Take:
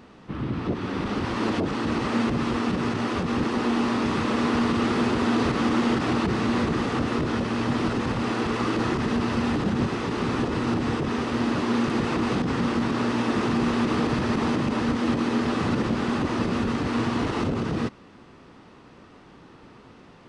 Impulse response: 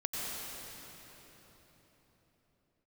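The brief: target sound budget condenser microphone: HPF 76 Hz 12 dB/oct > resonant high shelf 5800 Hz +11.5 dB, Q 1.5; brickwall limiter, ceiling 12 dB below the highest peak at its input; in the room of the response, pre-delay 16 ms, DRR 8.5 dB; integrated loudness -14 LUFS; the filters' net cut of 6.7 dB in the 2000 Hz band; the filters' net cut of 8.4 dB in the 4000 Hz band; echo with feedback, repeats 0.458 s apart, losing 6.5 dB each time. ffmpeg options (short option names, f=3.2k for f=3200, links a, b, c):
-filter_complex "[0:a]equalizer=f=2k:t=o:g=-6,equalizer=f=4k:t=o:g=-7.5,alimiter=level_in=0.5dB:limit=-24dB:level=0:latency=1,volume=-0.5dB,aecho=1:1:458|916|1374|1832|2290|2748:0.473|0.222|0.105|0.0491|0.0231|0.0109,asplit=2[a][b];[1:a]atrim=start_sample=2205,adelay=16[c];[b][c]afir=irnorm=-1:irlink=0,volume=-13.5dB[d];[a][d]amix=inputs=2:normalize=0,highpass=76,highshelf=f=5.8k:t=q:w=1.5:g=11.5,volume=17dB"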